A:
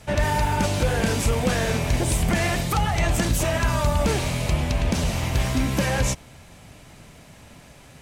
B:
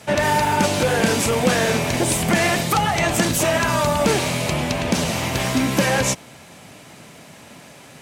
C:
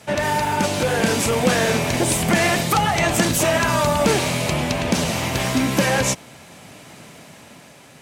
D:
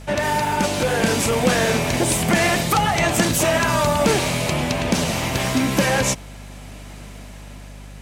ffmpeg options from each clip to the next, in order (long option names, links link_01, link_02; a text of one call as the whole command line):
ffmpeg -i in.wav -af "highpass=170,volume=6dB" out.wav
ffmpeg -i in.wav -af "dynaudnorm=framelen=180:gausssize=11:maxgain=6.5dB,volume=-2.5dB" out.wav
ffmpeg -i in.wav -af "aeval=exprs='val(0)+0.0141*(sin(2*PI*50*n/s)+sin(2*PI*2*50*n/s)/2+sin(2*PI*3*50*n/s)/3+sin(2*PI*4*50*n/s)/4+sin(2*PI*5*50*n/s)/5)':channel_layout=same" out.wav